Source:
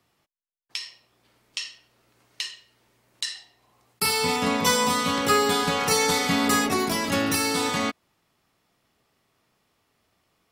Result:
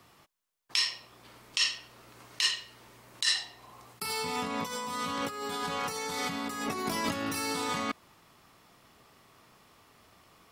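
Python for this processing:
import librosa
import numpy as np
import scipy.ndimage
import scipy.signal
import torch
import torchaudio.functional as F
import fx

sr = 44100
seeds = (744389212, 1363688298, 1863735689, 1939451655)

y = fx.peak_eq(x, sr, hz=1100.0, db=4.5, octaves=0.58)
y = fx.over_compress(y, sr, threshold_db=-33.0, ratio=-1.0)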